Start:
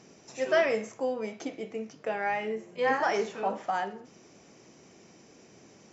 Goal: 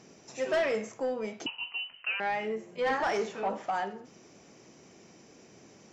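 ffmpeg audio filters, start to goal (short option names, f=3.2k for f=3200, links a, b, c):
-filter_complex "[0:a]asoftclip=type=tanh:threshold=-22dB,asettb=1/sr,asplit=3[a][b][c];[a]atrim=end=1.464[d];[b]atrim=start=1.46:end=2.2,asetpts=PTS-STARTPTS,afade=t=in:d=0.004:c=qsin,afade=t=out:st=0.736:d=0.004:c=qsin,lowpass=f=2.7k:t=q:w=0.5098,lowpass=f=2.7k:t=q:w=0.6013,lowpass=f=2.7k:t=q:w=0.9,lowpass=f=2.7k:t=q:w=2.563,afreqshift=-3200[e];[c]atrim=start=2.196[f];[d][e]acrossfade=d=0.004:c1=hsin:c2=qsin[g];[g][f]acrossfade=d=0.004:c1=qsin:c2=hsin"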